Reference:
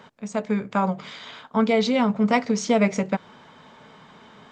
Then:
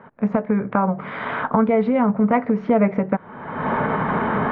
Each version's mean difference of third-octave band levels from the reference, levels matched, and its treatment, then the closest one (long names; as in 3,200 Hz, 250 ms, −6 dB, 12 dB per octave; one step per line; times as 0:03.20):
8.5 dB: camcorder AGC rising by 48 dB per second
low-pass filter 1,800 Hz 24 dB per octave
level +2.5 dB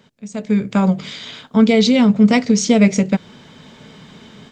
3.5 dB: parametric band 1,000 Hz −14 dB 2.1 octaves
automatic gain control gain up to 11.5 dB
level +1.5 dB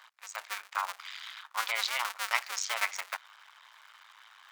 15.5 dB: sub-harmonics by changed cycles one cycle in 2, muted
high-pass filter 1,100 Hz 24 dB per octave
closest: second